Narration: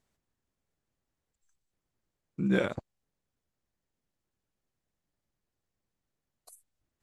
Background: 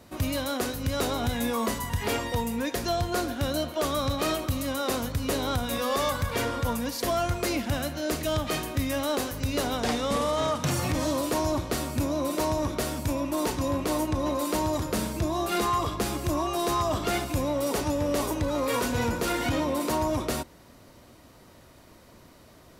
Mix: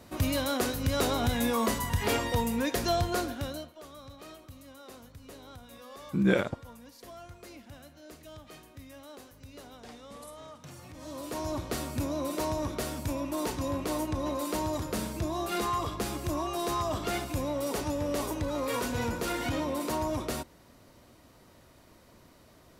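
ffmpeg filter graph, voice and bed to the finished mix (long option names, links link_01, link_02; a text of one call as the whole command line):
ffmpeg -i stem1.wav -i stem2.wav -filter_complex "[0:a]adelay=3750,volume=2.5dB[link_01];[1:a]volume=16dB,afade=type=out:start_time=2.97:duration=0.77:silence=0.0944061,afade=type=in:start_time=10.96:duration=0.76:silence=0.158489[link_02];[link_01][link_02]amix=inputs=2:normalize=0" out.wav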